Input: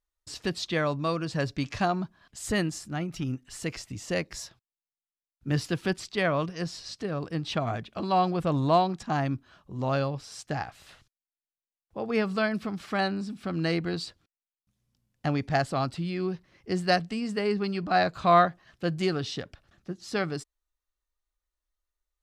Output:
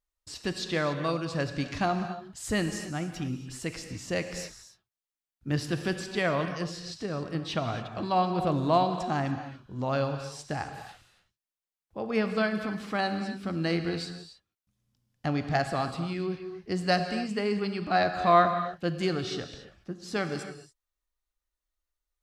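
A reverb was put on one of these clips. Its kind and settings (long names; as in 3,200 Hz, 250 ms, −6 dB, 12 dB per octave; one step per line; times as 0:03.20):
reverb whose tail is shaped and stops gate 310 ms flat, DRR 7 dB
level −1.5 dB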